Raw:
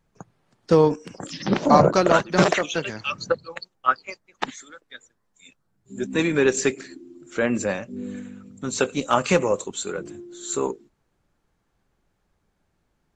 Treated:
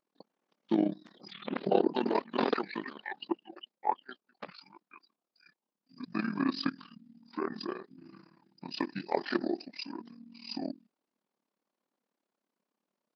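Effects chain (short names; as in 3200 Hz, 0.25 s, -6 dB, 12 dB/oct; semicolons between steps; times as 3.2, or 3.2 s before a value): brick-wall FIR high-pass 270 Hz; AM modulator 57 Hz, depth 80%; pitch shift -7 st; gain -7 dB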